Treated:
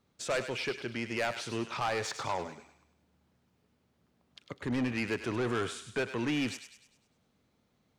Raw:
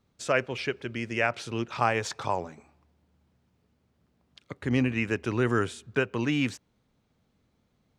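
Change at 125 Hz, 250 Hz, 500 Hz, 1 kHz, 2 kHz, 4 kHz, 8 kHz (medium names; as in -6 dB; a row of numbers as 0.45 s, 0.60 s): -8.0 dB, -5.0 dB, -5.0 dB, -5.5 dB, -5.5 dB, -1.0 dB, -0.5 dB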